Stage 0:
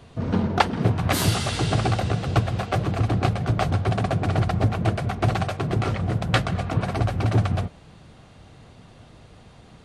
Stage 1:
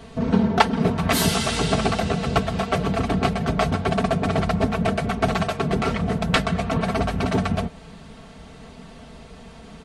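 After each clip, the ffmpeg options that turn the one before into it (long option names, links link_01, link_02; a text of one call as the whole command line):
ffmpeg -i in.wav -filter_complex "[0:a]aecho=1:1:4.5:0.8,asplit=2[link_01][link_02];[link_02]acompressor=threshold=-29dB:ratio=6,volume=-0.5dB[link_03];[link_01][link_03]amix=inputs=2:normalize=0,volume=-1dB" out.wav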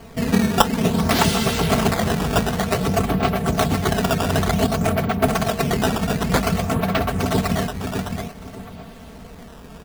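ffmpeg -i in.wav -filter_complex "[0:a]asplit=2[link_01][link_02];[link_02]adelay=609,lowpass=frequency=3200:poles=1,volume=-5dB,asplit=2[link_03][link_04];[link_04]adelay=609,lowpass=frequency=3200:poles=1,volume=0.26,asplit=2[link_05][link_06];[link_06]adelay=609,lowpass=frequency=3200:poles=1,volume=0.26[link_07];[link_01][link_03][link_05][link_07]amix=inputs=4:normalize=0,acrusher=samples=12:mix=1:aa=0.000001:lfo=1:lforange=19.2:lforate=0.54,volume=1dB" out.wav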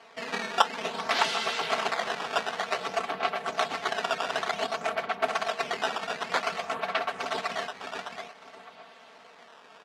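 ffmpeg -i in.wav -af "highpass=750,lowpass=4500,volume=-3.5dB" out.wav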